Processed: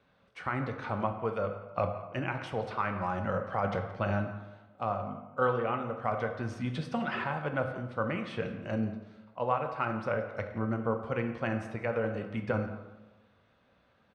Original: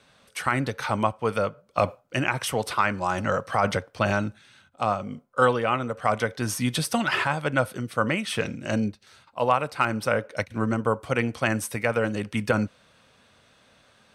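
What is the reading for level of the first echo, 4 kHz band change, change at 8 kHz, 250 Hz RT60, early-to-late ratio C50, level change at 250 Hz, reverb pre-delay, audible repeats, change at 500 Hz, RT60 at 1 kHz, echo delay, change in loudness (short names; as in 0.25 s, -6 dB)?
-18.5 dB, -15.0 dB, under -25 dB, 1.1 s, 7.5 dB, -7.0 dB, 4 ms, 1, -6.0 dB, 1.1 s, 0.173 s, -7.5 dB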